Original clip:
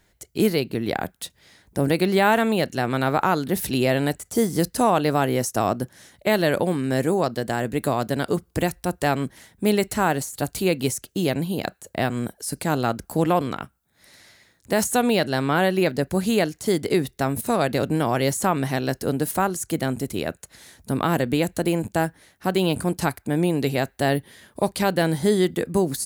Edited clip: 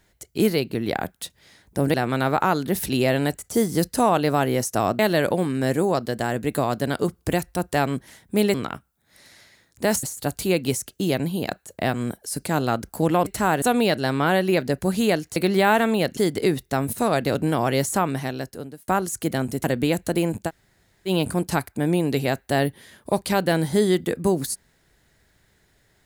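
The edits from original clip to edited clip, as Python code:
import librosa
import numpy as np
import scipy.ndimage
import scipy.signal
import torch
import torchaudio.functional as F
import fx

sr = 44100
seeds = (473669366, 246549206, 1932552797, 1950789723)

y = fx.edit(x, sr, fx.move(start_s=1.94, length_s=0.81, to_s=16.65),
    fx.cut(start_s=5.8, length_s=0.48),
    fx.swap(start_s=9.83, length_s=0.36, other_s=13.42, other_length_s=1.49),
    fx.fade_out_span(start_s=18.42, length_s=0.94),
    fx.cut(start_s=20.12, length_s=1.02),
    fx.room_tone_fill(start_s=21.98, length_s=0.6, crossfade_s=0.06), tone=tone)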